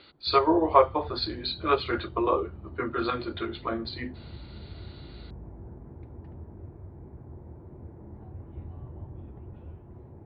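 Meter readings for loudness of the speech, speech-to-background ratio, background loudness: -27.0 LUFS, 18.0 dB, -45.0 LUFS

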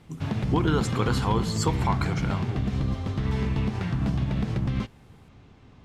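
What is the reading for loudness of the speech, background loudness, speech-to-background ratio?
-29.0 LUFS, -28.0 LUFS, -1.0 dB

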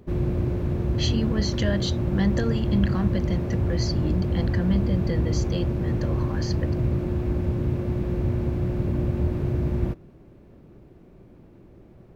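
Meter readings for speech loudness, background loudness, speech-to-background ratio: -29.0 LUFS, -26.0 LUFS, -3.0 dB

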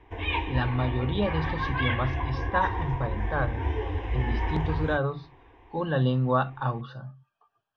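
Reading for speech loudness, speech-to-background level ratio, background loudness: -29.5 LUFS, 1.5 dB, -31.0 LUFS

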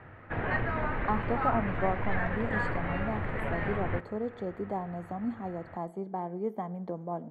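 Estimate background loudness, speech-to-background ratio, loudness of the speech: -33.0 LUFS, -2.5 dB, -35.5 LUFS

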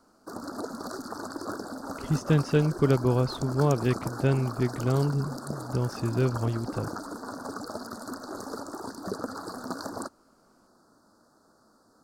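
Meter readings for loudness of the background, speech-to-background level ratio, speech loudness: -37.5 LUFS, 10.5 dB, -27.0 LUFS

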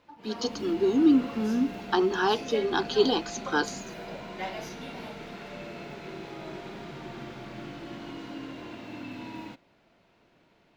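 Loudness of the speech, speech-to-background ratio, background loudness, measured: -26.5 LUFS, 13.0 dB, -39.5 LUFS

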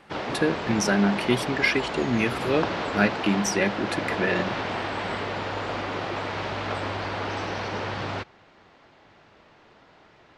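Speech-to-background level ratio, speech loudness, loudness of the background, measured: 4.5 dB, -25.5 LUFS, -30.0 LUFS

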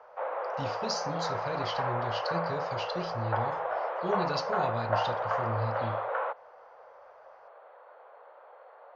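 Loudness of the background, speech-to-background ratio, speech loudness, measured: -32.5 LUFS, -4.5 dB, -37.0 LUFS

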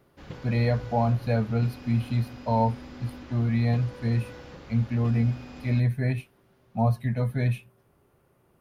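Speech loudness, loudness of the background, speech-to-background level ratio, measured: -27.0 LUFS, -44.0 LUFS, 17.0 dB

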